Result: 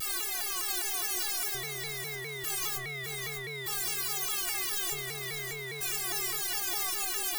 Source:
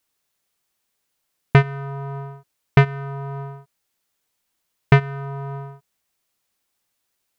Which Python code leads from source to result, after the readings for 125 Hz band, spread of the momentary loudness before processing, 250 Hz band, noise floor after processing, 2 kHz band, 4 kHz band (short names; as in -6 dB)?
-25.0 dB, 17 LU, -20.0 dB, -39 dBFS, -6.0 dB, +8.0 dB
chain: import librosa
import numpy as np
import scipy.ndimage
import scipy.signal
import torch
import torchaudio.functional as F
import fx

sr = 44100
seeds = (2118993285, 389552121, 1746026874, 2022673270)

y = np.sign(x) * np.sqrt(np.mean(np.square(x)))
y = fx.stiff_resonator(y, sr, f0_hz=380.0, decay_s=0.34, stiffness=0.008)
y = fx.echo_feedback(y, sr, ms=601, feedback_pct=33, wet_db=-7.5)
y = fx.vibrato_shape(y, sr, shape='saw_down', rate_hz=4.9, depth_cents=160.0)
y = y * 10.0 ** (8.5 / 20.0)